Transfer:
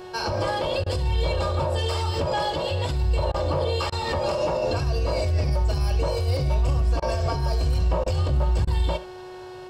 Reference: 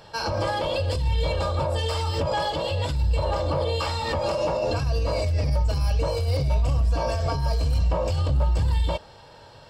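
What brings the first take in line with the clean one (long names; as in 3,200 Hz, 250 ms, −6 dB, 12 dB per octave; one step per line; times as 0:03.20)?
hum removal 367.6 Hz, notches 37
repair the gap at 0:00.84/0:03.32/0:03.90/0:07.00/0:08.04/0:08.65, 21 ms
echo removal 72 ms −15.5 dB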